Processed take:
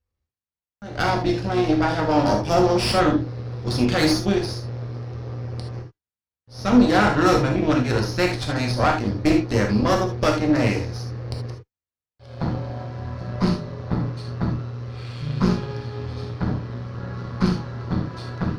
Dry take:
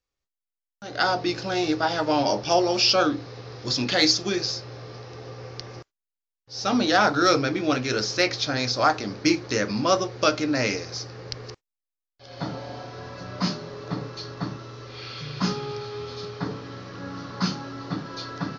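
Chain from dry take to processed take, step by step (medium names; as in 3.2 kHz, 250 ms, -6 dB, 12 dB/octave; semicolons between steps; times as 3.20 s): partial rectifier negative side -7 dB; peaking EQ 81 Hz +14 dB 1.9 oct; Chebyshev shaper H 6 -16 dB, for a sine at -6.5 dBFS; treble shelf 3 kHz -10.5 dB; gated-style reverb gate 100 ms flat, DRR 2 dB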